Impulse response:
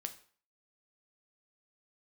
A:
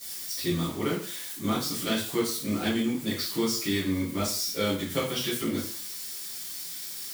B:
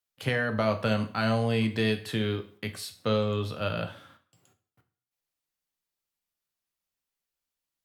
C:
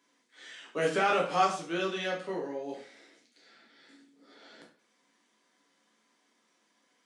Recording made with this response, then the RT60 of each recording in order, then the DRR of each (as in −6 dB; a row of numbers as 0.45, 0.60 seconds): B; 0.45, 0.45, 0.45 seconds; −11.5, 6.5, −3.0 decibels